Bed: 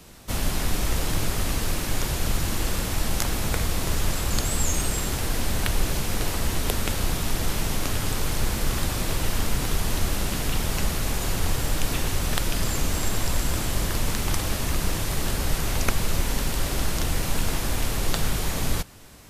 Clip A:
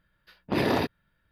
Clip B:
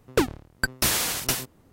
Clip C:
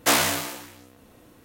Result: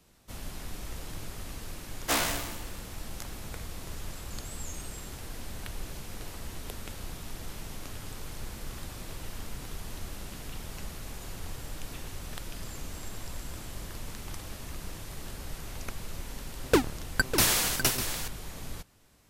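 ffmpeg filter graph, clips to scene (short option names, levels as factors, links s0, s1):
-filter_complex "[0:a]volume=0.178[s0];[2:a]aecho=1:1:600:0.316[s1];[3:a]atrim=end=1.44,asetpts=PTS-STARTPTS,volume=0.422,afade=t=in:d=0.1,afade=t=out:st=1.34:d=0.1,adelay=2020[s2];[s1]atrim=end=1.72,asetpts=PTS-STARTPTS,volume=0.891,afade=t=in:d=0.004:c=hsin,afade=t=out:st=1.716:d=0.004:c=hsin,adelay=16560[s3];[s0][s2][s3]amix=inputs=3:normalize=0"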